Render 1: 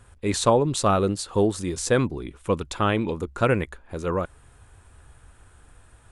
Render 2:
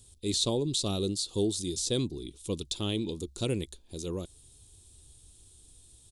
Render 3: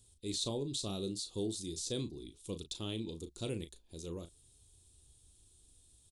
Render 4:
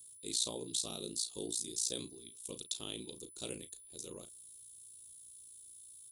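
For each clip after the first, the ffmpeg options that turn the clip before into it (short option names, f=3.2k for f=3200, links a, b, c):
-filter_complex "[0:a]firequalizer=gain_entry='entry(240,0);entry(350,3);entry(530,-7);entry(1500,-20);entry(3600,14)':delay=0.05:min_phase=1,acrossover=split=3800[a][b];[b]acompressor=threshold=-24dB:ratio=4:attack=1:release=60[c];[a][c]amix=inputs=2:normalize=0,volume=-7.5dB"
-filter_complex "[0:a]asplit=2[a][b];[b]adelay=36,volume=-10dB[c];[a][c]amix=inputs=2:normalize=0,volume=-8.5dB"
-af "aeval=exprs='val(0)*sin(2*PI*29*n/s)':c=same,aeval=exprs='val(0)+0.000501*sin(2*PI*10000*n/s)':c=same,aemphasis=mode=production:type=bsi"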